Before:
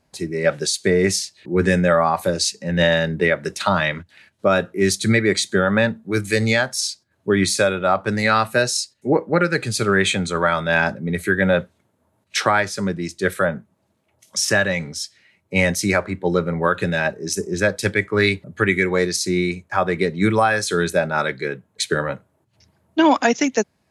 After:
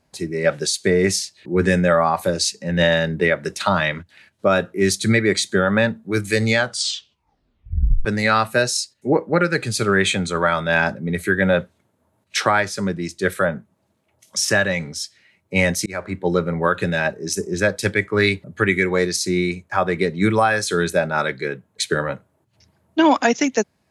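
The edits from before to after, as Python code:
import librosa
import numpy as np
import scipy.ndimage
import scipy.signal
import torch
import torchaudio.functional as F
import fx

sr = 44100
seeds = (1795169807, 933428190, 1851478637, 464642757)

y = fx.edit(x, sr, fx.tape_stop(start_s=6.58, length_s=1.47),
    fx.fade_in_span(start_s=15.86, length_s=0.29), tone=tone)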